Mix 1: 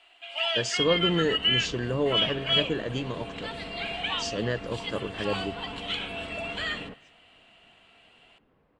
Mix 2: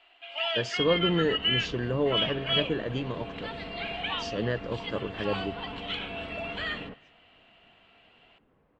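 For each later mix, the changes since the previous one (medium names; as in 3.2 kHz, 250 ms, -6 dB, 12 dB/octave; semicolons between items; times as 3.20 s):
master: add distance through air 150 m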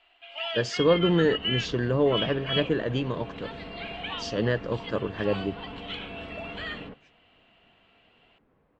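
speech +4.0 dB; first sound: send off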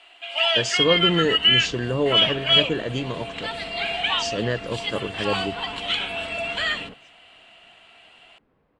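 first sound +10.0 dB; master: remove distance through air 150 m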